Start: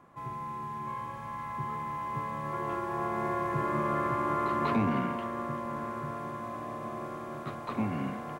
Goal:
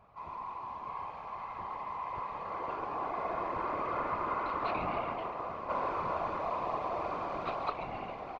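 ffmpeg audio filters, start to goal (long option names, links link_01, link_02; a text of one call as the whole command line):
ffmpeg -i in.wav -filter_complex "[0:a]acrossover=split=120[link_01][link_02];[link_01]acompressor=mode=upward:threshold=-53dB:ratio=2.5[link_03];[link_02]highpass=frequency=310:width=0.5412,highpass=frequency=310:width=1.3066,equalizer=frequency=330:width_type=q:width=4:gain=-3,equalizer=frequency=730:width_type=q:width=4:gain=8,equalizer=frequency=1200:width_type=q:width=4:gain=4,equalizer=frequency=1700:width_type=q:width=4:gain=-6,equalizer=frequency=2500:width_type=q:width=4:gain=8,equalizer=frequency=4400:width_type=q:width=4:gain=6,lowpass=frequency=5200:width=0.5412,lowpass=frequency=5200:width=1.3066[link_04];[link_03][link_04]amix=inputs=2:normalize=0,asettb=1/sr,asplit=3[link_05][link_06][link_07];[link_05]atrim=end=5.694[link_08];[link_06]atrim=start=5.69:end=7.7,asetpts=PTS-STARTPTS,afade=type=in:duration=0.004:curve=qsin,afade=type=out:start_time=2.006:duration=0.004:curve=qsin,acontrast=82[link_09];[link_07]atrim=start=7.696[link_10];[link_08][link_09]acrossfade=duration=0.004:curve1=hsin:curve2=qsin[link_11];[link_11][link_10]acrossfade=duration=0.004:curve1=qsin:curve2=hsin,asplit=8[link_12][link_13][link_14][link_15][link_16][link_17][link_18][link_19];[link_13]adelay=140,afreqshift=-130,volume=-11dB[link_20];[link_14]adelay=280,afreqshift=-260,volume=-15.2dB[link_21];[link_15]adelay=420,afreqshift=-390,volume=-19.3dB[link_22];[link_16]adelay=560,afreqshift=-520,volume=-23.5dB[link_23];[link_17]adelay=700,afreqshift=-650,volume=-27.6dB[link_24];[link_18]adelay=840,afreqshift=-780,volume=-31.8dB[link_25];[link_19]adelay=980,afreqshift=-910,volume=-35.9dB[link_26];[link_12][link_20][link_21][link_22][link_23][link_24][link_25][link_26]amix=inputs=8:normalize=0,afftfilt=real='hypot(re,im)*cos(2*PI*random(0))':imag='hypot(re,im)*sin(2*PI*random(1))':win_size=512:overlap=0.75" out.wav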